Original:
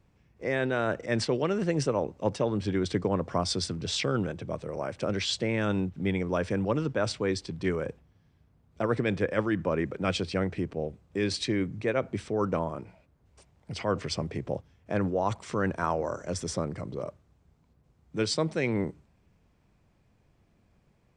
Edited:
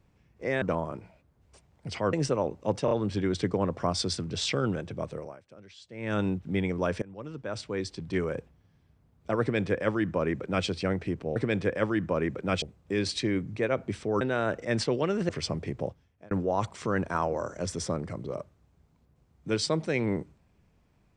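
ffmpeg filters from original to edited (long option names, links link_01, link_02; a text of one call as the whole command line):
ffmpeg -i in.wav -filter_complex "[0:a]asplit=13[link_01][link_02][link_03][link_04][link_05][link_06][link_07][link_08][link_09][link_10][link_11][link_12][link_13];[link_01]atrim=end=0.622[link_14];[link_02]atrim=start=12.458:end=13.972[link_15];[link_03]atrim=start=1.698:end=2.452[link_16];[link_04]atrim=start=2.418:end=2.452[link_17];[link_05]atrim=start=2.418:end=4.96,asetpts=PTS-STARTPTS,afade=type=out:start_time=2.252:duration=0.29:curve=qua:silence=0.0841395[link_18];[link_06]atrim=start=4.96:end=5.36,asetpts=PTS-STARTPTS,volume=-21.5dB[link_19];[link_07]atrim=start=5.36:end=6.53,asetpts=PTS-STARTPTS,afade=type=in:duration=0.29:curve=qua:silence=0.0841395,afade=type=out:start_time=1.166:duration=0.004:curve=hsin:silence=0.0707946[link_20];[link_08]atrim=start=6.53:end=10.872,asetpts=PTS-STARTPTS,afade=type=in:duration=1.22:silence=0.0707946[link_21];[link_09]atrim=start=8.918:end=10.182[link_22];[link_10]atrim=start=10.868:end=12.462[link_23];[link_11]atrim=start=0.618:end=1.702[link_24];[link_12]atrim=start=13.968:end=14.99,asetpts=PTS-STARTPTS,afade=type=out:start_time=0.532:duration=0.49[link_25];[link_13]atrim=start=14.99,asetpts=PTS-STARTPTS,afade=type=in:duration=0.004:curve=hsin[link_26];[link_14][link_15]acrossfade=duration=0.004:curve1=hsin:curve2=hsin[link_27];[link_27][link_16]acrossfade=duration=0.004:curve1=hsin:curve2=hsin[link_28];[link_28][link_17]acrossfade=duration=0.004:curve1=hsin:curve2=hsin[link_29];[link_18][link_19][link_20][link_21]concat=n=4:v=0:a=1[link_30];[link_29][link_30]acrossfade=duration=0.004:curve1=hsin:curve2=hsin[link_31];[link_31][link_22]acrossfade=duration=0.004:curve1=hsin:curve2=hsin[link_32];[link_32][link_23]acrossfade=duration=0.004:curve1=hsin:curve2=hsin[link_33];[link_33][link_24]acrossfade=duration=0.004:curve1=hsin:curve2=hsin[link_34];[link_25][link_26]concat=n=2:v=0:a=1[link_35];[link_34][link_35]acrossfade=duration=0.004:curve1=hsin:curve2=hsin" out.wav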